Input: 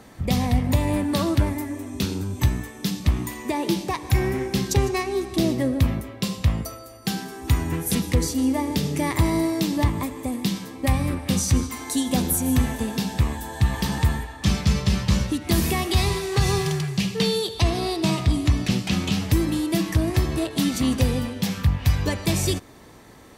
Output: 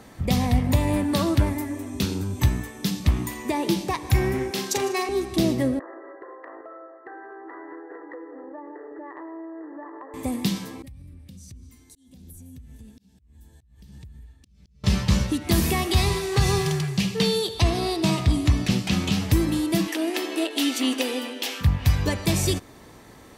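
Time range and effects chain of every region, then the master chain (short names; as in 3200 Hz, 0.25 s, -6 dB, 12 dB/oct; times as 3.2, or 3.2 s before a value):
4.51–5.09 HPF 370 Hz + doubler 41 ms -6 dB
5.79–10.14 brick-wall FIR band-pass 290–2000 Hz + compressor 4:1, threshold -37 dBFS
10.82–14.84 passive tone stack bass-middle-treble 10-0-1 + compressor 12:1, threshold -39 dBFS + auto swell 0.355 s
19.88–21.61 brick-wall FIR high-pass 240 Hz + bell 2900 Hz +7.5 dB 0.53 oct + notch 1100 Hz, Q 13
whole clip: dry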